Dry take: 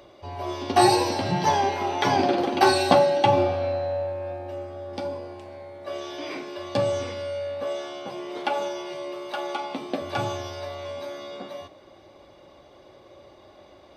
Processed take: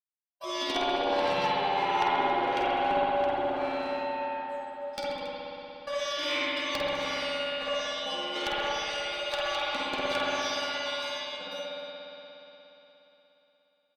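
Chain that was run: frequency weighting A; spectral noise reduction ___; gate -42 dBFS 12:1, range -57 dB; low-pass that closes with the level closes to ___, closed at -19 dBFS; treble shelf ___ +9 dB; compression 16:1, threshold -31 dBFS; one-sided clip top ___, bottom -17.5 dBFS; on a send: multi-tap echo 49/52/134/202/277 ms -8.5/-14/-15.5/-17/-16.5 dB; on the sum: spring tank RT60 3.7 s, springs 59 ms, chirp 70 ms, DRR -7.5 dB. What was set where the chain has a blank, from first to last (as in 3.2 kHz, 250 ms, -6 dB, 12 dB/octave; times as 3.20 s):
24 dB, 630 Hz, 2.6 kHz, -31 dBFS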